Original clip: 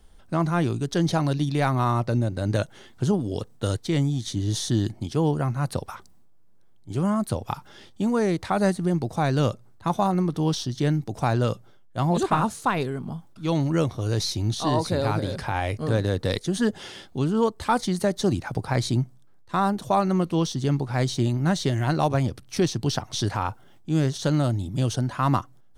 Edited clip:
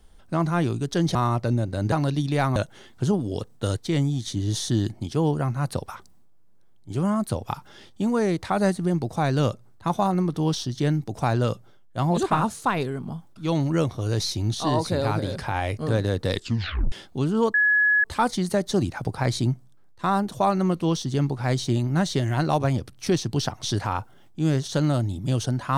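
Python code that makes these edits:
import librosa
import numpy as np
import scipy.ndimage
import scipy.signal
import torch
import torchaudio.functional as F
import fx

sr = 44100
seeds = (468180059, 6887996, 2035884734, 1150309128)

y = fx.edit(x, sr, fx.move(start_s=1.15, length_s=0.64, to_s=2.56),
    fx.tape_stop(start_s=16.33, length_s=0.59),
    fx.insert_tone(at_s=17.54, length_s=0.5, hz=1690.0, db=-16.0), tone=tone)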